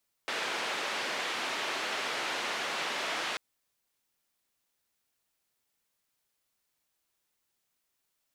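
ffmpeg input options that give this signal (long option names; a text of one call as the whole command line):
ffmpeg -f lavfi -i "anoisesrc=color=white:duration=3.09:sample_rate=44100:seed=1,highpass=frequency=350,lowpass=frequency=2900,volume=-20.2dB" out.wav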